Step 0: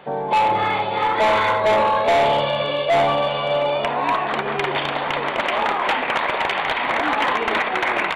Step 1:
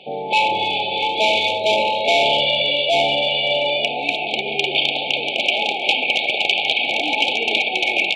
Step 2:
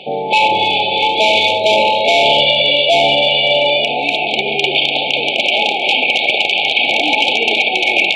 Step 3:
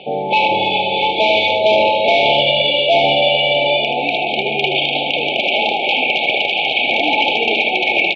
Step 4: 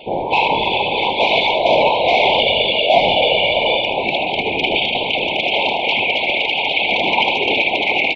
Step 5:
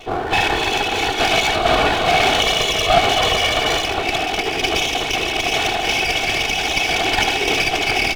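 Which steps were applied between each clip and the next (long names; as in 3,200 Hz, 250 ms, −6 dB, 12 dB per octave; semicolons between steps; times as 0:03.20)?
brick-wall band-stop 880–2,200 Hz; meter weighting curve D; level −1 dB
reversed playback; upward compression, threshold −21 dBFS; reversed playback; brickwall limiter −8.5 dBFS, peak gain reduction 7 dB; level +6.5 dB
high-frequency loss of the air 210 metres; repeating echo 78 ms, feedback 35%, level −8 dB
random phases in short frames; level −1 dB
lower of the sound and its delayed copy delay 2.7 ms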